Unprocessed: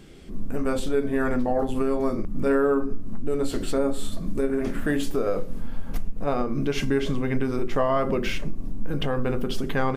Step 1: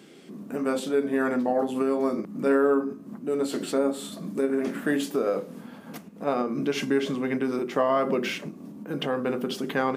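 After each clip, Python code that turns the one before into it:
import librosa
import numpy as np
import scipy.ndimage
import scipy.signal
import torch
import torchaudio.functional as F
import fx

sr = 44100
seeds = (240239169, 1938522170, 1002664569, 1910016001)

y = scipy.signal.sosfilt(scipy.signal.butter(4, 180.0, 'highpass', fs=sr, output='sos'), x)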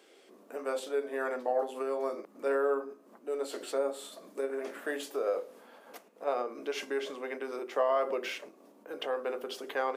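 y = fx.ladder_highpass(x, sr, hz=390.0, resonance_pct=30)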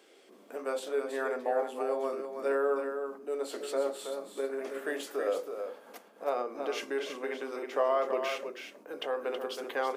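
y = x + 10.0 ** (-7.0 / 20.0) * np.pad(x, (int(323 * sr / 1000.0), 0))[:len(x)]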